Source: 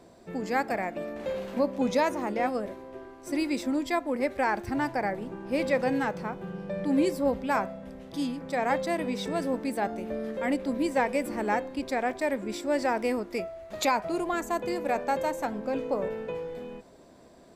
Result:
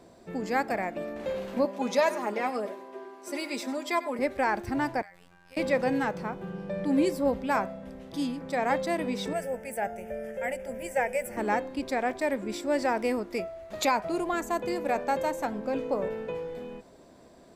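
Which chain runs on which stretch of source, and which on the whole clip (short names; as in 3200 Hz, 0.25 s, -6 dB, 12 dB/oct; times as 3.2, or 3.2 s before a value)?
1.65–4.19 HPF 330 Hz + comb 4.9 ms, depth 66% + echo 96 ms -15 dB
5.02–5.57 passive tone stack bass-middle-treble 10-0-10 + compressor 10:1, threshold -43 dBFS + robotiser 88.1 Hz
9.33–11.37 high shelf 5300 Hz +6.5 dB + fixed phaser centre 1100 Hz, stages 6
whole clip: dry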